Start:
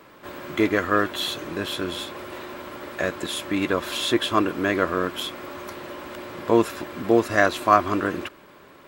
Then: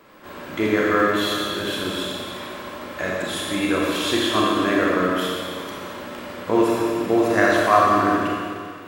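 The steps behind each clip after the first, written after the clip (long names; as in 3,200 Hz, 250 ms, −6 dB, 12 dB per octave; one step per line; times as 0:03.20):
four-comb reverb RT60 2.1 s, combs from 29 ms, DRR −4 dB
level −2.5 dB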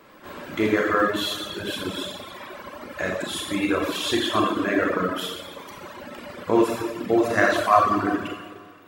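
reverb reduction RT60 1.9 s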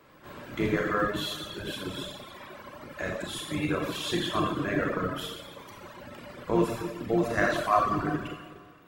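sub-octave generator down 1 octave, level −2 dB
level −6.5 dB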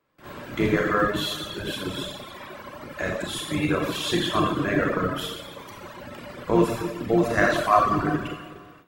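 noise gate with hold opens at −45 dBFS
level +5 dB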